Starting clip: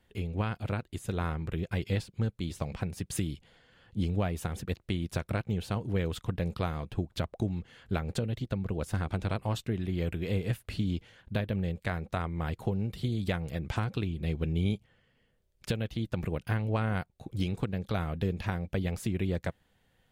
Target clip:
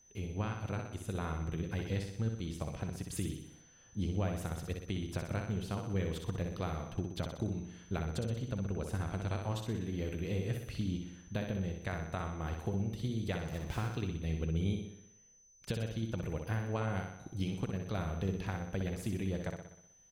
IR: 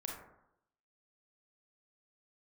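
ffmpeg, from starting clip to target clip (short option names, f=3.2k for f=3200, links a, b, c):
-filter_complex "[0:a]asettb=1/sr,asplit=3[a][b][c];[a]atrim=end=13.404[d];[b]atrim=start=13.4:end=13.93,asetpts=PTS-STARTPTS,afade=t=in:d=0.004:c=qsin,afade=t=out:st=0.526:d=0.004:c=qsin,acrusher=bits=6:mix=0:aa=0.5[e];[c]atrim=start=13.926[f];[d][e]acrossfade=d=0.004:c1=hsin:c2=qsin[g];[g][f]acrossfade=d=0.004:c1=qsin:c2=hsin,aeval=exprs='val(0)+0.00158*sin(2*PI*6100*n/s)':c=same,aecho=1:1:62|124|186|248|310|372|434:0.531|0.292|0.161|0.0883|0.0486|0.0267|0.0147,asplit=2[h][i];[1:a]atrim=start_sample=2205,lowpass=f=2.2k:w=0.5412,lowpass=f=2.2k:w=1.3066[j];[i][j]afir=irnorm=-1:irlink=0,volume=-15.5dB[k];[h][k]amix=inputs=2:normalize=0,volume=-6.5dB"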